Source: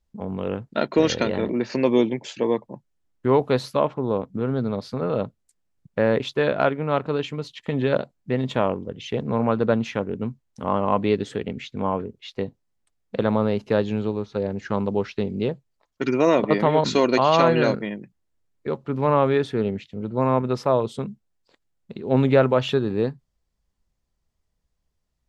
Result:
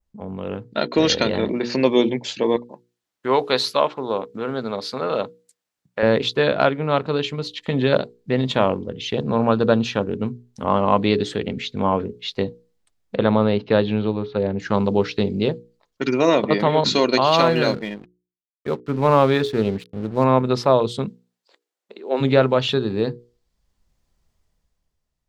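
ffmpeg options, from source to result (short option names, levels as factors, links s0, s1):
-filter_complex "[0:a]asettb=1/sr,asplit=3[s0][s1][s2];[s0]atrim=end=2.564[s3];[s1]atrim=start=2.56:end=6.03,asetpts=PTS-STARTPTS,afade=t=in:d=0.004:c=qsin,afade=t=out:st=3.466:d=0.004:c=qsin,highpass=f=800:p=1[s4];[s2]atrim=start=6.026[s5];[s3][s4]acrossfade=d=0.004:c1=hsin:c2=qsin[s6];[s6][s5]acrossfade=d=0.004:c1=qsin:c2=hsin,asettb=1/sr,asplit=3[s7][s8][s9];[s7]atrim=end=9.144[s10];[s8]atrim=start=9.14:end=10.11,asetpts=PTS-STARTPTS,afade=t=in:d=0.004:c=qsin,afade=t=out:st=0.966:d=0.004:c=qsin,bandreject=f=2100:w=5.5[s11];[s9]atrim=start=10.106[s12];[s10][s11]acrossfade=d=0.004:c1=hsin:c2=qsin[s13];[s13][s12]acrossfade=d=0.004:c1=qsin:c2=hsin,asettb=1/sr,asplit=3[s14][s15][s16];[s14]atrim=end=13.164[s17];[s15]atrim=start=13.16:end=14.6,asetpts=PTS-STARTPTS,afade=t=in:d=0.004:c=qsin,afade=t=out:st=1.436:d=0.004:c=qsin,lowpass=f=3900:w=0.5412,lowpass=f=3900:w=1.3066[s18];[s16]atrim=start=14.596[s19];[s17][s18]acrossfade=d=0.004:c1=hsin:c2=qsin[s20];[s20][s19]acrossfade=d=0.004:c1=qsin:c2=hsin,asettb=1/sr,asplit=3[s21][s22][s23];[s21]atrim=end=17.264[s24];[s22]atrim=start=17.26:end=20.24,asetpts=PTS-STARTPTS,afade=t=in:d=0.004:c=qsin,afade=t=out:st=2.976:d=0.004:c=qsin,aeval=exprs='sgn(val(0))*max(abs(val(0))-0.00596,0)':c=same[s25];[s23]atrim=start=20.236[s26];[s24][s25]acrossfade=d=0.004:c1=hsin:c2=qsin[s27];[s27][s26]acrossfade=d=0.004:c1=qsin:c2=hsin,asplit=3[s28][s29][s30];[s28]afade=t=out:st=21.08:d=0.02[s31];[s29]highpass=f=350:w=0.5412,highpass=f=350:w=1.3066,afade=t=in:st=21.08:d=0.02,afade=t=out:st=22.2:d=0.02[s32];[s30]afade=t=in:st=22.2:d=0.02[s33];[s31][s32][s33]amix=inputs=3:normalize=0,bandreject=f=60:t=h:w=6,bandreject=f=120:t=h:w=6,bandreject=f=180:t=h:w=6,bandreject=f=240:t=h:w=6,bandreject=f=300:t=h:w=6,bandreject=f=360:t=h:w=6,bandreject=f=420:t=h:w=6,bandreject=f=480:t=h:w=6,adynamicequalizer=threshold=0.00355:dfrequency=4100:dqfactor=1.6:tfrequency=4100:tqfactor=1.6:attack=5:release=100:ratio=0.375:range=4:mode=boostabove:tftype=bell,dynaudnorm=f=140:g=13:m=3.76,volume=0.841"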